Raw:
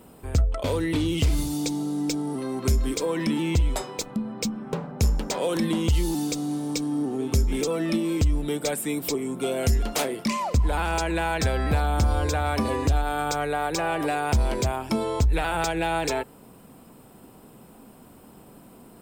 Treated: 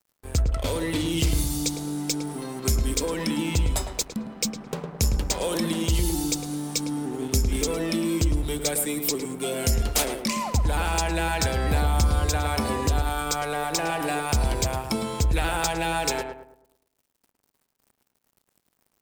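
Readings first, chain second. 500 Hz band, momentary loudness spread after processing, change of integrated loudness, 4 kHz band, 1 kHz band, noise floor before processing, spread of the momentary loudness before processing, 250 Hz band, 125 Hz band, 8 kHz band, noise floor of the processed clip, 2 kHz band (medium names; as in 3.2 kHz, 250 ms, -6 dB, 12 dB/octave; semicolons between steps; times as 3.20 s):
-2.0 dB, 5 LU, 0.0 dB, +3.5 dB, -1.0 dB, -50 dBFS, 5 LU, -2.0 dB, -0.5 dB, +5.5 dB, -76 dBFS, 0.0 dB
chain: treble shelf 3.4 kHz +9.5 dB; crossover distortion -40 dBFS; on a send: filtered feedback delay 108 ms, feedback 40%, low-pass 1.5 kHz, level -5 dB; on the sum: trim -1.5 dB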